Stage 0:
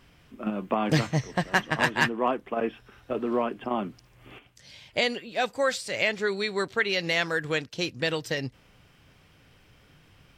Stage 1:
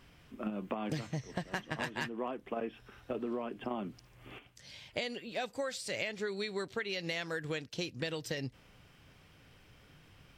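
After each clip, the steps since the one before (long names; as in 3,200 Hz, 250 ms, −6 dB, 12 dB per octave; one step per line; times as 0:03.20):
dynamic equaliser 1,200 Hz, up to −4 dB, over −40 dBFS, Q 0.75
downward compressor 12 to 1, threshold −30 dBFS, peak gain reduction 13 dB
level −2.5 dB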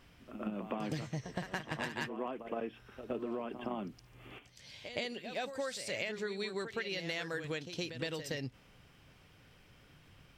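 backwards echo 116 ms −9.5 dB
level −1.5 dB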